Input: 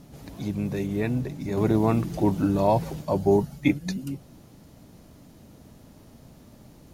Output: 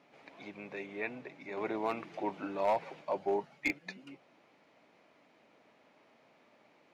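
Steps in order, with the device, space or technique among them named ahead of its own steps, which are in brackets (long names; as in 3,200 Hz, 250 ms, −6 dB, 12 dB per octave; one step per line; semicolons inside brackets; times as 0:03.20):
megaphone (band-pass filter 560–2,800 Hz; parametric band 2,300 Hz +8.5 dB 0.45 octaves; hard clipping −18 dBFS, distortion −17 dB)
level −5 dB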